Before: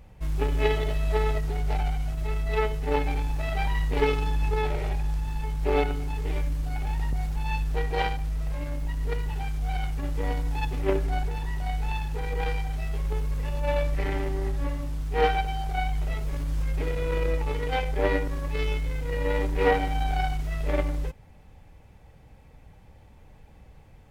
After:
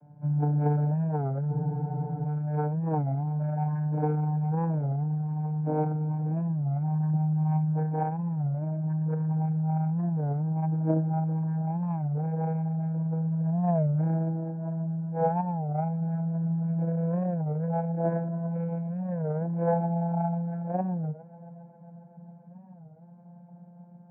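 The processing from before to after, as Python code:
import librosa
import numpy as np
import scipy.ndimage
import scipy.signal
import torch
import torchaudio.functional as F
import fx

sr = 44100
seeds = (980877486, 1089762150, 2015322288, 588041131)

p1 = fx.vocoder_glide(x, sr, note=50, semitones=3)
p2 = scipy.signal.sosfilt(scipy.signal.butter(2, 180.0, 'highpass', fs=sr, output='sos'), p1)
p3 = p2 + 0.84 * np.pad(p2, (int(1.3 * sr / 1000.0), 0))[:len(p2)]
p4 = fx.rider(p3, sr, range_db=10, speed_s=2.0)
p5 = scipy.signal.sosfilt(scipy.signal.butter(4, 1300.0, 'lowpass', fs=sr, output='sos'), p4)
p6 = fx.low_shelf(p5, sr, hz=420.0, db=9.0)
p7 = p6 + fx.echo_heads(p6, sr, ms=136, heads='second and third', feedback_pct=67, wet_db=-20.5, dry=0)
p8 = fx.spec_freeze(p7, sr, seeds[0], at_s=1.53, hold_s=0.71)
p9 = fx.record_warp(p8, sr, rpm=33.33, depth_cents=160.0)
y = F.gain(torch.from_numpy(p9), -1.5).numpy()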